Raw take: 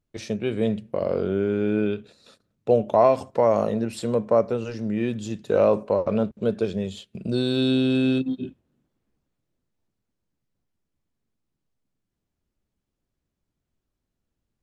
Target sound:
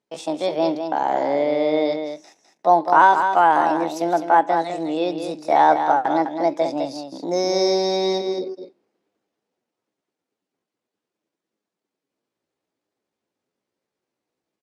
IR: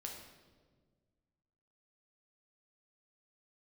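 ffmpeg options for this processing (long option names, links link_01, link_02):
-af "asetrate=64194,aresample=44100,atempo=0.686977,highpass=310,lowpass=7200,aecho=1:1:205:0.422,volume=4dB"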